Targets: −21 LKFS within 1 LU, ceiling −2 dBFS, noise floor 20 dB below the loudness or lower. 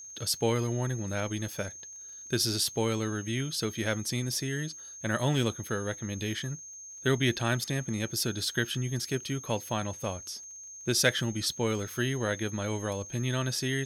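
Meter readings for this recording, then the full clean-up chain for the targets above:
crackle rate 34 per second; interfering tone 6,400 Hz; level of the tone −43 dBFS; integrated loudness −31.0 LKFS; sample peak −9.5 dBFS; target loudness −21.0 LKFS
→ click removal
notch filter 6,400 Hz, Q 30
level +10 dB
brickwall limiter −2 dBFS

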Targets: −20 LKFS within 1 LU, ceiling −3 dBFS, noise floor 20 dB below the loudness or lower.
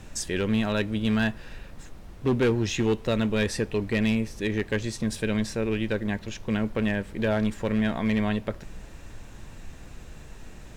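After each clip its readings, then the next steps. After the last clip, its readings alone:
share of clipped samples 1.1%; peaks flattened at −18.0 dBFS; background noise floor −45 dBFS; target noise floor −47 dBFS; integrated loudness −27.0 LKFS; sample peak −18.0 dBFS; target loudness −20.0 LKFS
→ clipped peaks rebuilt −18 dBFS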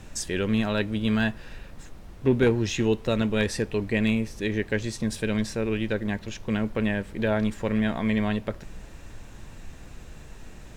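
share of clipped samples 0.0%; background noise floor −45 dBFS; target noise floor −47 dBFS
→ noise reduction from a noise print 6 dB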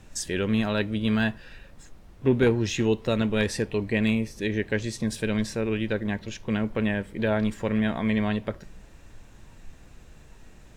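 background noise floor −50 dBFS; integrated loudness −26.5 LKFS; sample peak −10.0 dBFS; target loudness −20.0 LKFS
→ level +6.5 dB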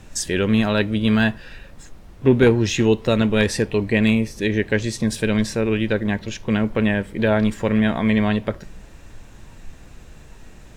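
integrated loudness −20.0 LKFS; sample peak −3.5 dBFS; background noise floor −44 dBFS

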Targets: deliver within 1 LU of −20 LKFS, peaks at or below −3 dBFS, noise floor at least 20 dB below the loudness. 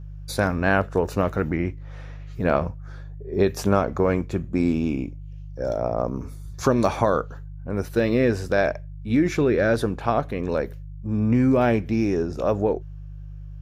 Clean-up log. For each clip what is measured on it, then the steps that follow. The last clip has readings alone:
mains hum 50 Hz; hum harmonics up to 150 Hz; level of the hum −35 dBFS; integrated loudness −23.5 LKFS; sample peak −5.0 dBFS; target loudness −20.0 LKFS
→ hum removal 50 Hz, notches 3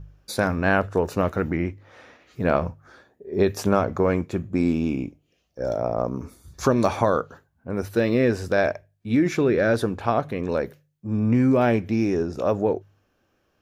mains hum none found; integrated loudness −23.5 LKFS; sample peak −5.0 dBFS; target loudness −20.0 LKFS
→ level +3.5 dB
brickwall limiter −3 dBFS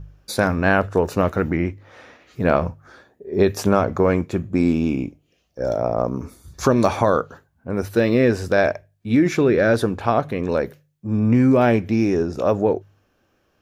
integrated loudness −20.0 LKFS; sample peak −3.0 dBFS; background noise floor −66 dBFS

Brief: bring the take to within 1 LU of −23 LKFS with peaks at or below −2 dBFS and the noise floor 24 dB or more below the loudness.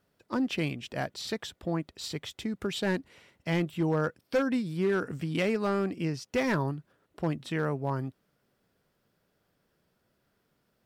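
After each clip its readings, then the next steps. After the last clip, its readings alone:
share of clipped samples 0.7%; peaks flattened at −21.0 dBFS; integrated loudness −31.5 LKFS; sample peak −21.0 dBFS; target loudness −23.0 LKFS
→ clipped peaks rebuilt −21 dBFS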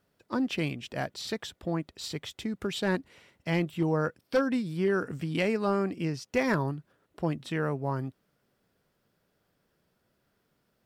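share of clipped samples 0.0%; integrated loudness −31.0 LKFS; sample peak −14.0 dBFS; target loudness −23.0 LKFS
→ level +8 dB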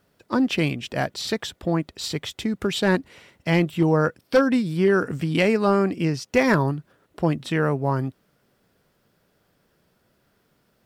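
integrated loudness −23.0 LKFS; sample peak −6.0 dBFS; background noise floor −67 dBFS

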